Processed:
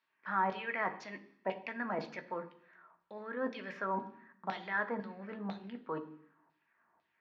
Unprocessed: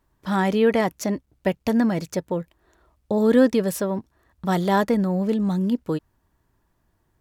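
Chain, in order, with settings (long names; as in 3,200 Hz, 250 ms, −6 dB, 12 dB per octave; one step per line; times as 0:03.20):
in parallel at −2.5 dB: output level in coarse steps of 14 dB
on the sum: parametric band 3,400 Hz −5.5 dB 0.46 octaves
reversed playback
downward compressor 5 to 1, threshold −25 dBFS, peak gain reduction 16 dB
reversed playback
auto-filter band-pass saw down 2 Hz 790–4,100 Hz
high-frequency loss of the air 220 metres
convolution reverb RT60 0.70 s, pre-delay 3 ms, DRR 6 dB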